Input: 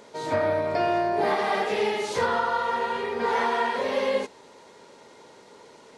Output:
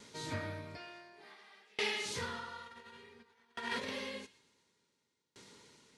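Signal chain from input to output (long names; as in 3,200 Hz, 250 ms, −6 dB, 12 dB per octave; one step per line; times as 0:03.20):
0:00.77–0:02.06: meter weighting curve A
0:02.65–0:03.90: compressor whose output falls as the input rises −28 dBFS, ratio −0.5
high-pass filter 57 Hz
guitar amp tone stack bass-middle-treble 6-0-2
delay with a high-pass on its return 117 ms, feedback 49%, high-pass 1,500 Hz, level −16.5 dB
tremolo with a ramp in dB decaying 0.56 Hz, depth 32 dB
level +16.5 dB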